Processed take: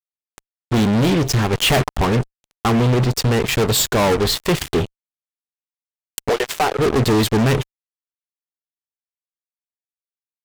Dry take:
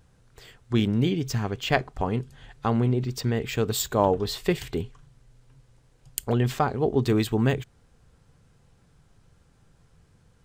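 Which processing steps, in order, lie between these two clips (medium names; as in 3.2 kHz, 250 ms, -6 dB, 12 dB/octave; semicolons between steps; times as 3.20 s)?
1.53–1.97 s: waveshaping leveller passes 2; 6.29–6.79 s: Chebyshev high-pass 410 Hz, order 5; fuzz box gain 33 dB, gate -36 dBFS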